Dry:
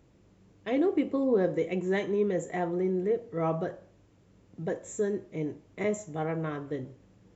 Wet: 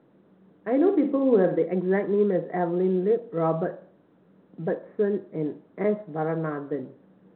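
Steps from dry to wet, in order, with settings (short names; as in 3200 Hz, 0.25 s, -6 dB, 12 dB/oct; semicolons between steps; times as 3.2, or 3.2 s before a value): Wiener smoothing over 9 samples; Chebyshev band-pass 170–1700 Hz, order 3; 0.76–1.64 flutter echo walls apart 9.6 m, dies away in 0.36 s; gain +5.5 dB; µ-law 64 kbps 8000 Hz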